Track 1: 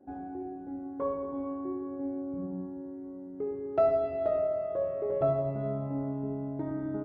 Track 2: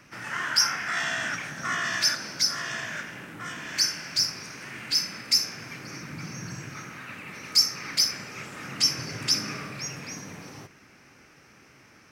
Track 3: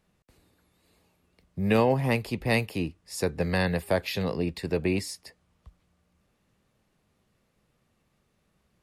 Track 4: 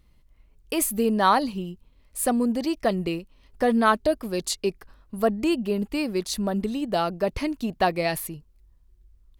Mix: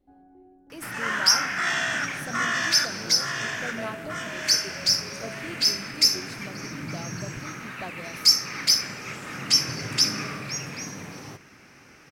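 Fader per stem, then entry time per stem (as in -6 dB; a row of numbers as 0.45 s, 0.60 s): -14.5 dB, +3.0 dB, -20.0 dB, -17.0 dB; 0.00 s, 0.70 s, 1.30 s, 0.00 s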